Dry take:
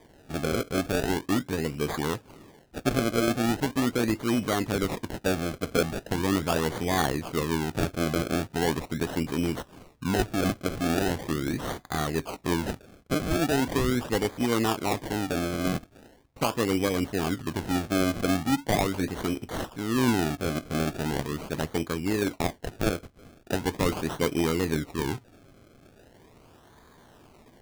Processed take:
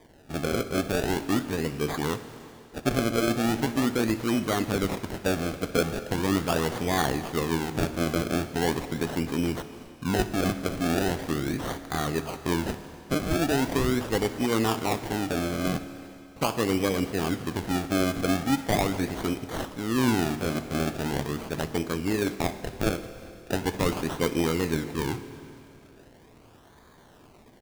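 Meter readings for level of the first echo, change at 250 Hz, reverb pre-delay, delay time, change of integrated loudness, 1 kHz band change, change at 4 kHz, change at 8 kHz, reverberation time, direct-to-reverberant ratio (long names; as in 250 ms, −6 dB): −19.5 dB, +0.5 dB, 26 ms, 61 ms, +0.5 dB, +0.5 dB, +0.5 dB, +0.5 dB, 2.8 s, 10.5 dB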